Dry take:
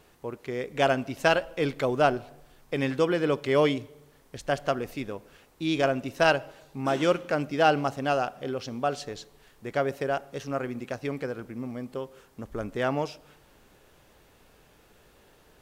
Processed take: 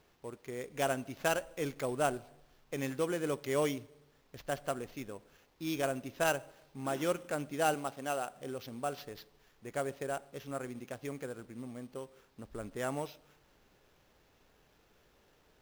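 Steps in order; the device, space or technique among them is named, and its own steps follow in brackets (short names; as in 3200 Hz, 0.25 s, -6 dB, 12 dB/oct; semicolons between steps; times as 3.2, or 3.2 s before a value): early companding sampler (sample-rate reducer 8900 Hz, jitter 0%; companded quantiser 6-bit); 7.74–8.31 HPF 250 Hz 6 dB/oct; gain -9 dB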